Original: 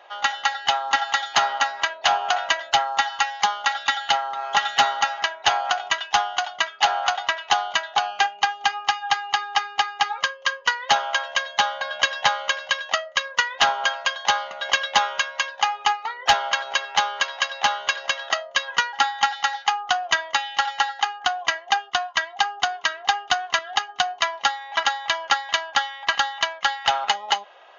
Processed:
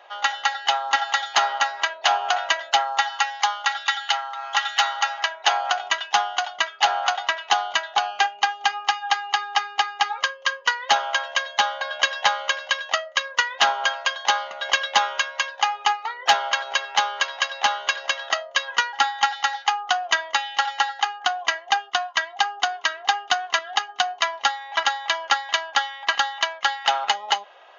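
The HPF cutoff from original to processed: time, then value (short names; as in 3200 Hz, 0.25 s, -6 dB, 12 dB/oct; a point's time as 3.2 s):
2.76 s 320 Hz
4 s 960 Hz
4.85 s 960 Hz
5.82 s 240 Hz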